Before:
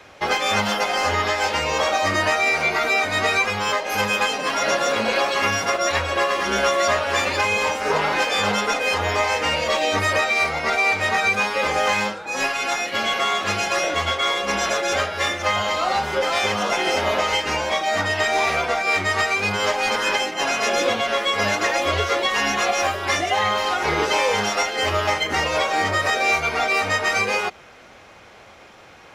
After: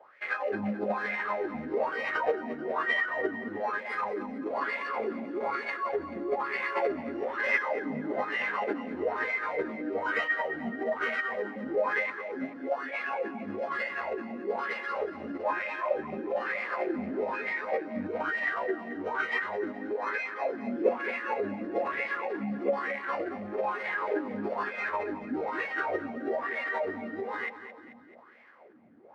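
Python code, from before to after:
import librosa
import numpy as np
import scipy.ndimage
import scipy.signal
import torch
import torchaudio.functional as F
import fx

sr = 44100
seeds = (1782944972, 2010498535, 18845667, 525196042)

p1 = fx.rattle_buzz(x, sr, strikes_db=-33.0, level_db=-16.0)
p2 = fx.highpass(p1, sr, hz=170.0, slope=6)
p3 = fx.low_shelf(p2, sr, hz=320.0, db=10.0)
p4 = fx.sample_hold(p3, sr, seeds[0], rate_hz=3100.0, jitter_pct=0)
p5 = p3 + F.gain(torch.from_numpy(p4), -10.0).numpy()
p6 = fx.wah_lfo(p5, sr, hz=1.1, low_hz=230.0, high_hz=2700.0, q=8.1)
p7 = fx.echo_feedback(p6, sr, ms=218, feedback_pct=52, wet_db=-12.0)
y = fx.formant_shift(p7, sr, semitones=-4)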